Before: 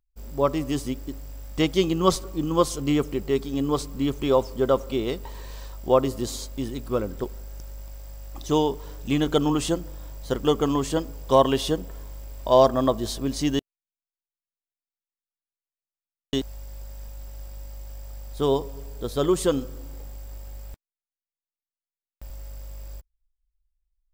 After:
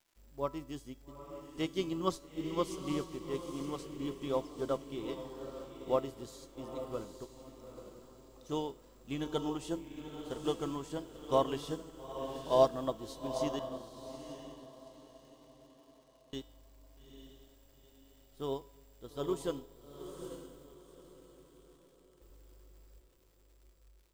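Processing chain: echo that smears into a reverb 866 ms, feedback 45%, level -5 dB; crackle 230 per s -37 dBFS; feedback comb 330 Hz, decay 0.62 s, mix 70%; upward expansion 1.5:1, over -43 dBFS

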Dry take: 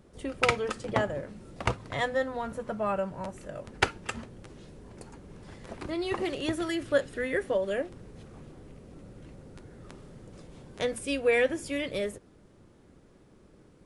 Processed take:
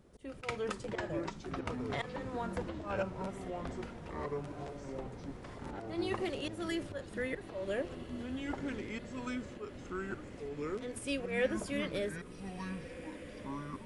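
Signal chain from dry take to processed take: slow attack 192 ms; ever faster or slower copies 335 ms, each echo -5 st, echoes 3; echo that smears into a reverb 1602 ms, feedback 56%, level -14 dB; trim -5 dB

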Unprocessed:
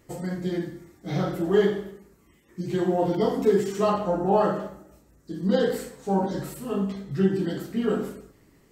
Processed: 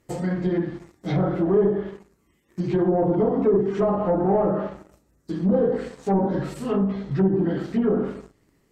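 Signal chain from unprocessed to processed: waveshaping leveller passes 2; low-pass that closes with the level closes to 700 Hz, closed at -14 dBFS; trim -2 dB

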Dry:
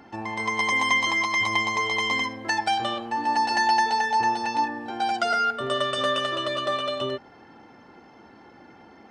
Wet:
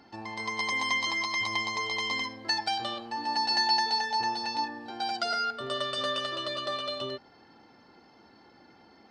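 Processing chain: peaking EQ 4.5 kHz +14 dB 0.45 oct; trim -7.5 dB

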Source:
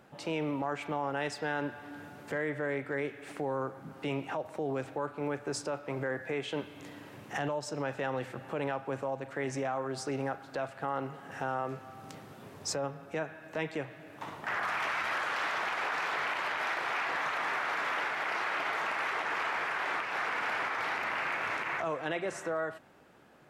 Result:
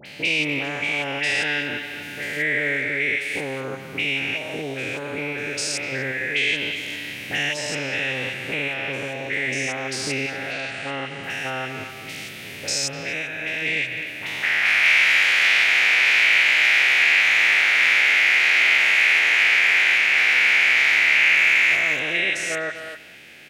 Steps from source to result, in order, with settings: spectrogram pixelated in time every 200 ms; resonant high shelf 1.6 kHz +12.5 dB, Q 3; band-stop 7.5 kHz, Q 23; in parallel at -3 dB: compression, threshold -37 dBFS, peak gain reduction 17.5 dB; 1.69–2.72 s: on the sum: added noise white -68 dBFS; 10.46–11.18 s: steep low-pass 9.6 kHz 36 dB/octave; phase dispersion highs, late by 59 ms, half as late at 1.9 kHz; speakerphone echo 250 ms, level -9 dB; trim +4.5 dB

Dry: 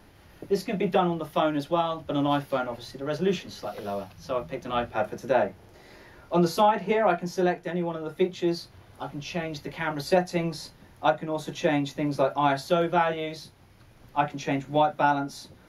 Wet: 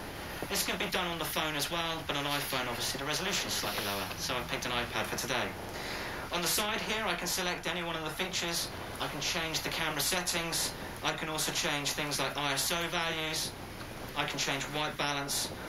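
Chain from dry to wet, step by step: spectrum-flattening compressor 4:1; trim -7 dB

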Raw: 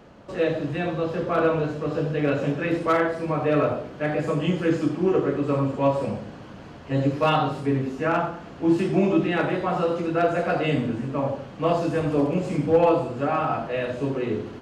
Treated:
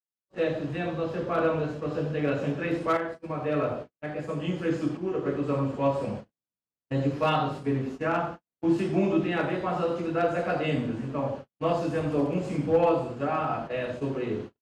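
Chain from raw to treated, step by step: 2.97–5.26 s: tremolo saw up 1 Hz, depth 50%; gate -31 dBFS, range -57 dB; trim -4 dB

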